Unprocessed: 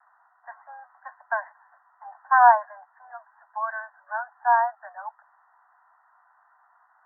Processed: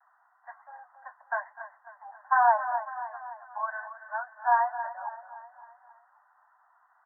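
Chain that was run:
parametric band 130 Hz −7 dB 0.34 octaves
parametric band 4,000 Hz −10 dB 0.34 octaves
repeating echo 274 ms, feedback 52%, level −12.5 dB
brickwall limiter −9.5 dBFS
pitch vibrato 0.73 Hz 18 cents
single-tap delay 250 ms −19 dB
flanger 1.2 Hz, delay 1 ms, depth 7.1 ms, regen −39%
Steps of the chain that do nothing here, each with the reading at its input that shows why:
parametric band 130 Hz: nothing at its input below 600 Hz
parametric band 4,000 Hz: nothing at its input above 1,900 Hz

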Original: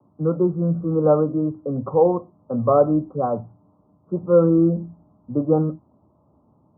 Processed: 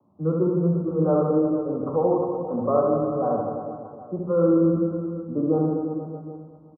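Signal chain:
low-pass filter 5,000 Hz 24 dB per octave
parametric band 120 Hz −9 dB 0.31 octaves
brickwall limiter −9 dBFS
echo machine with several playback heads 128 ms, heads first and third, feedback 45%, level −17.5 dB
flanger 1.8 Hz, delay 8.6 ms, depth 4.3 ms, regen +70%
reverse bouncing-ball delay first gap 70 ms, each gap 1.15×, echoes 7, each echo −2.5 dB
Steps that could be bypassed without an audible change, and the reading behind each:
low-pass filter 5,000 Hz: nothing at its input above 1,400 Hz

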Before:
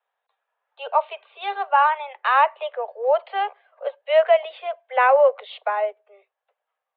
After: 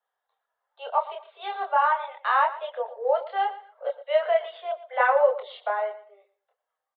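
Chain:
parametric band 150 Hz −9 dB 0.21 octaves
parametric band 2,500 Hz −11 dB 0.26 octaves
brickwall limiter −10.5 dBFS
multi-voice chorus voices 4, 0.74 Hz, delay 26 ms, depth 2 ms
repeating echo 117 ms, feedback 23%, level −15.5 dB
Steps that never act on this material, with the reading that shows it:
parametric band 150 Hz: nothing at its input below 380 Hz

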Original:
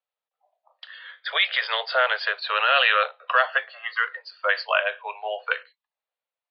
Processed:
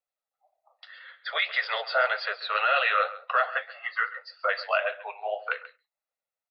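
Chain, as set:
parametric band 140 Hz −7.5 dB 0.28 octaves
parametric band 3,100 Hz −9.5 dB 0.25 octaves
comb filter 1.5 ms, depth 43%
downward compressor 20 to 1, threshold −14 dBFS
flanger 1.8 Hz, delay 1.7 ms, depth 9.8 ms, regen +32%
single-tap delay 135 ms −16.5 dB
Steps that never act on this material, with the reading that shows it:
parametric band 140 Hz: nothing at its input below 400 Hz

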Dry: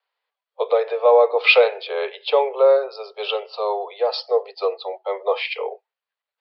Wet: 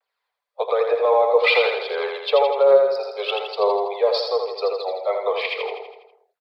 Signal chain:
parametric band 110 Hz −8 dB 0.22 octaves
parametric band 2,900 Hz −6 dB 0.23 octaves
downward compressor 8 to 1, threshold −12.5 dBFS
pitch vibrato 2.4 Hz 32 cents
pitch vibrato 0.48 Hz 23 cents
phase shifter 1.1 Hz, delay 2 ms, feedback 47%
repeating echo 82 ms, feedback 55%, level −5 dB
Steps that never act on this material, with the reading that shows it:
parametric band 110 Hz: nothing at its input below 380 Hz

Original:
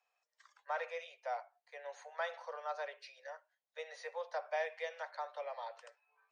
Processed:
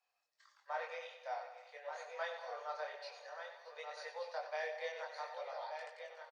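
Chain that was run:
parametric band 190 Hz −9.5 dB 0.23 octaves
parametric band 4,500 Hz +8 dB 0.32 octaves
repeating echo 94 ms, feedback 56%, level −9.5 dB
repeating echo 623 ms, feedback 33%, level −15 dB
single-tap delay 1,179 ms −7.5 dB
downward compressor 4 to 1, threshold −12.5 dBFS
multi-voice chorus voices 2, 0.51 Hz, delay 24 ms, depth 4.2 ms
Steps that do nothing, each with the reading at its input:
parametric band 190 Hz: nothing at its input below 400 Hz
downward compressor, threshold −12.5 dBFS: peak of its input −24.5 dBFS

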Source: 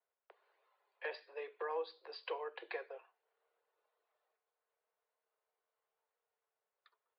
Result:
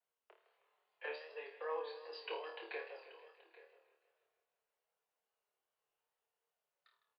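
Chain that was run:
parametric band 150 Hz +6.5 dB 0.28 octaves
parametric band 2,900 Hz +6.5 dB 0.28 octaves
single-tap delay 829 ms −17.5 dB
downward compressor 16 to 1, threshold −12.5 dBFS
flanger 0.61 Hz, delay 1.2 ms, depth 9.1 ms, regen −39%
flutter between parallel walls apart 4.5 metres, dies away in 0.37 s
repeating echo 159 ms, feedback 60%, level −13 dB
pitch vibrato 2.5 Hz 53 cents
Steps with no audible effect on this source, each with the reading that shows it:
parametric band 150 Hz: nothing at its input below 290 Hz
downward compressor, threshold −12.5 dBFS: peak of its input −28.0 dBFS

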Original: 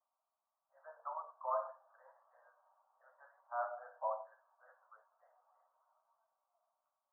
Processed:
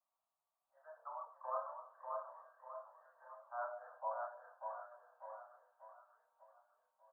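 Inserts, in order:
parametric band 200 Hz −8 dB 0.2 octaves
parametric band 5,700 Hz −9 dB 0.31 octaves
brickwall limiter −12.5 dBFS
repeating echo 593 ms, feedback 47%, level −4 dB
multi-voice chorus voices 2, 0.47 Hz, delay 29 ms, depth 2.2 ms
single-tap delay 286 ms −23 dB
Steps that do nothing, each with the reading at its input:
parametric band 200 Hz: nothing at its input below 480 Hz
parametric band 5,700 Hz: nothing at its input above 1,700 Hz
brickwall limiter −12.5 dBFS: peak of its input −25.0 dBFS

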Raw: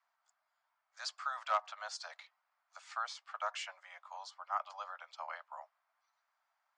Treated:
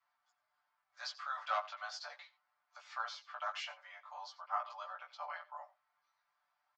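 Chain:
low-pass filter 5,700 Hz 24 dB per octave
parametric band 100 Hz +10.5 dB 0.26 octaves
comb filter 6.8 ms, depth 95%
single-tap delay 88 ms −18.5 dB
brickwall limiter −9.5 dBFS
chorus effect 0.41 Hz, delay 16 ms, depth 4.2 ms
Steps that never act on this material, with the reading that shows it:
parametric band 100 Hz: nothing at its input below 480 Hz
brickwall limiter −9.5 dBFS: peak of its input −19.0 dBFS

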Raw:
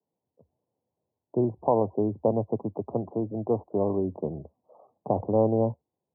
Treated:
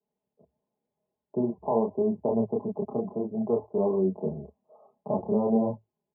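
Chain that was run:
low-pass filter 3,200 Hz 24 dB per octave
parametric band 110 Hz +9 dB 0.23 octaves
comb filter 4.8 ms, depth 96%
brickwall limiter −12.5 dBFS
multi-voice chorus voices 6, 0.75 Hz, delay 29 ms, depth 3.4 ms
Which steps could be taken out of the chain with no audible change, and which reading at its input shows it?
low-pass filter 3,200 Hz: nothing at its input above 1,100 Hz

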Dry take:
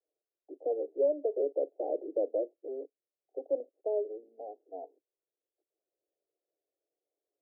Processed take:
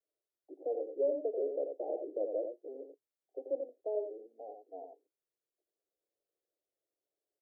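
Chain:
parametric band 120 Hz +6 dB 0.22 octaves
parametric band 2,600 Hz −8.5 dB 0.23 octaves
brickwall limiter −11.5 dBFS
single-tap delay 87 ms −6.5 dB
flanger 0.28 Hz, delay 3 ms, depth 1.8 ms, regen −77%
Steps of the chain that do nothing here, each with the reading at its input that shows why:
parametric band 120 Hz: nothing at its input below 240 Hz
parametric band 2,600 Hz: nothing at its input above 850 Hz
brickwall limiter −11.5 dBFS: peak of its input −19.0 dBFS

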